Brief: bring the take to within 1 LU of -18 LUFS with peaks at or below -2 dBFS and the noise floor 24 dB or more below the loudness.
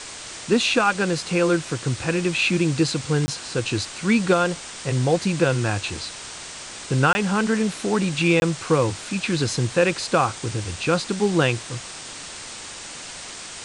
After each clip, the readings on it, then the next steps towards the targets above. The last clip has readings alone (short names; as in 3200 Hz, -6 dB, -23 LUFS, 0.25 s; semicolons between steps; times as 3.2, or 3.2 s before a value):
dropouts 3; longest dropout 20 ms; noise floor -37 dBFS; noise floor target -46 dBFS; loudness -22.0 LUFS; peak -6.5 dBFS; loudness target -18.0 LUFS
-> interpolate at 3.26/7.13/8.4, 20 ms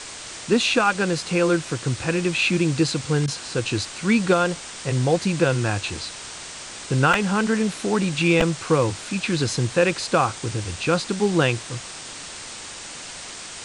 dropouts 0; noise floor -37 dBFS; noise floor target -46 dBFS
-> denoiser 9 dB, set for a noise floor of -37 dBFS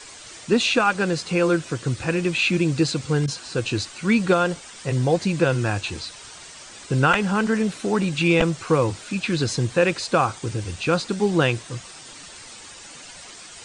noise floor -42 dBFS; noise floor target -46 dBFS
-> denoiser 6 dB, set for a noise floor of -42 dBFS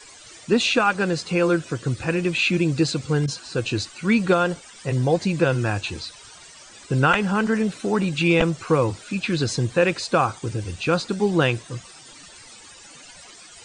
noise floor -46 dBFS; loudness -22.0 LUFS; peak -5.0 dBFS; loudness target -18.0 LUFS
-> gain +4 dB; limiter -2 dBFS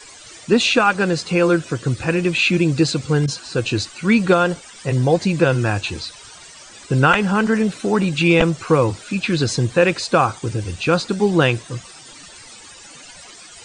loudness -18.0 LUFS; peak -2.0 dBFS; noise floor -42 dBFS